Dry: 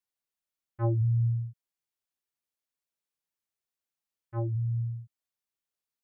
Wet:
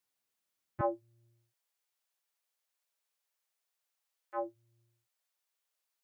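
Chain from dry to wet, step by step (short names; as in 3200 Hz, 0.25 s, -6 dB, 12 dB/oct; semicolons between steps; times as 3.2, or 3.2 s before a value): HPF 84 Hz 24 dB/oct, from 0.81 s 480 Hz; gain +5.5 dB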